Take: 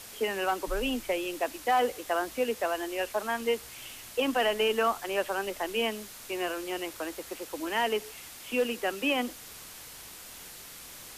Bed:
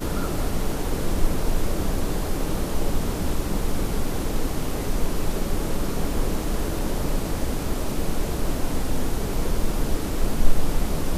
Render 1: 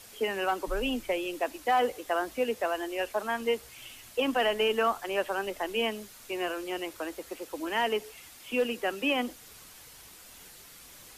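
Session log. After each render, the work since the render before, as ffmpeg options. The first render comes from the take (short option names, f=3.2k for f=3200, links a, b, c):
-af "afftdn=nr=6:nf=-47"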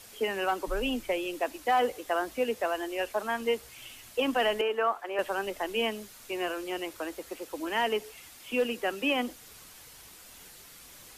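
-filter_complex "[0:a]asettb=1/sr,asplit=3[a][b][c];[a]atrim=end=4.614[d];[b]atrim=start=4.61:end=5.19,asetpts=PTS-STARTPTS,afade=t=in:d=0.004:c=qsin,afade=t=out:st=0.576:d=0.004:c=qsin,acrossover=split=320 2400:gain=0.126 1 0.224[e][f][g];[e][f][g]amix=inputs=3:normalize=0[h];[c]atrim=start=5.186[i];[d][h]acrossfade=d=0.004:c1=hsin:c2=qsin[j];[j][i]acrossfade=d=0.004:c1=qsin:c2=hsin"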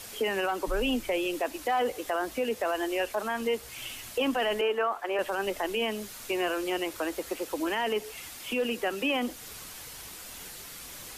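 -filter_complex "[0:a]asplit=2[a][b];[b]acompressor=threshold=-36dB:ratio=6,volume=2dB[c];[a][c]amix=inputs=2:normalize=0,alimiter=limit=-20dB:level=0:latency=1:release=19"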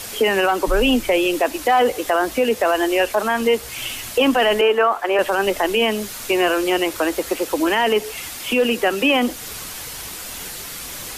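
-af "volume=11.5dB"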